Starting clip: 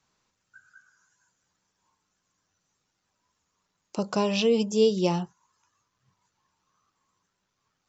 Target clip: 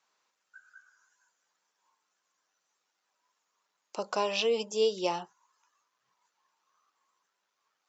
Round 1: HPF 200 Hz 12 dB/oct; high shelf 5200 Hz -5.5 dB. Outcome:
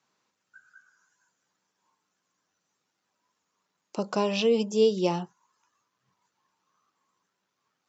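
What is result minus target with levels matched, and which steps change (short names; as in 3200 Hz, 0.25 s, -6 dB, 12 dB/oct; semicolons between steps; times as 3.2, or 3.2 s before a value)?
250 Hz band +8.0 dB
change: HPF 540 Hz 12 dB/oct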